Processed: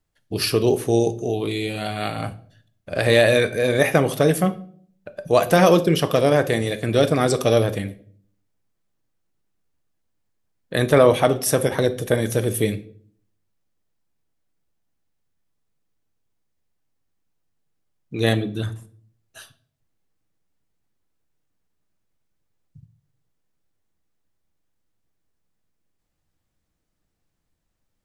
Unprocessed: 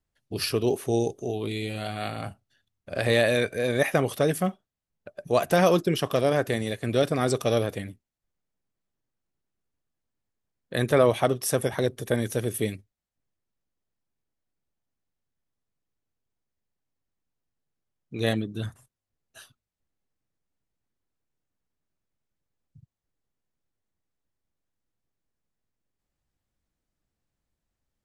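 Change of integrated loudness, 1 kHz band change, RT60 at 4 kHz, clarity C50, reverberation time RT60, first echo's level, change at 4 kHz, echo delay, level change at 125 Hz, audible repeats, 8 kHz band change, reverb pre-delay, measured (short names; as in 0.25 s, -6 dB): +6.0 dB, +5.5 dB, 0.40 s, 16.5 dB, 0.55 s, none, +6.0 dB, none, +6.0 dB, none, +6.0 dB, 6 ms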